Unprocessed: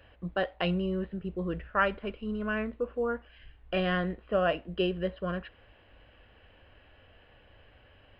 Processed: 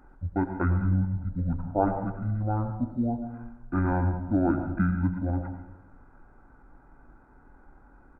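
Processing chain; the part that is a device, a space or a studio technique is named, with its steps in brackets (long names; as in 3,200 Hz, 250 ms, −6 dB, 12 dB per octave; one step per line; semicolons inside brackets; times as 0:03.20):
monster voice (pitch shifter −12 semitones; low-shelf EQ 150 Hz +4.5 dB; convolution reverb RT60 0.90 s, pre-delay 86 ms, DRR 7.5 dB)
level +1.5 dB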